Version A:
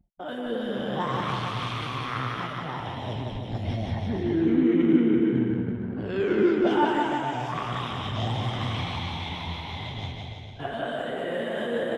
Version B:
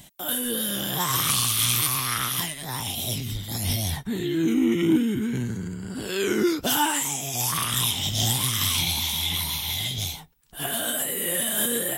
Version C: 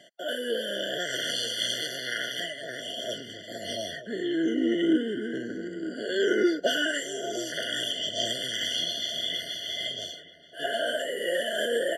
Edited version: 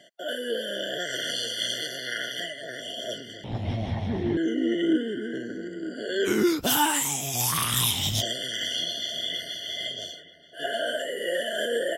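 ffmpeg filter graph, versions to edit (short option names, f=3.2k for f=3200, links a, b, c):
-filter_complex "[2:a]asplit=3[a][b][c];[a]atrim=end=3.442[d];[0:a]atrim=start=3.438:end=4.372[e];[b]atrim=start=4.368:end=6.28[f];[1:a]atrim=start=6.24:end=8.23[g];[c]atrim=start=8.19[h];[d][e]acrossfade=d=0.004:c1=hsin:c2=hsin[i];[i][f]acrossfade=d=0.004:c1=hsin:c2=hsin[j];[j][g]acrossfade=d=0.04:c1=tri:c2=tri[k];[k][h]acrossfade=d=0.04:c1=tri:c2=tri"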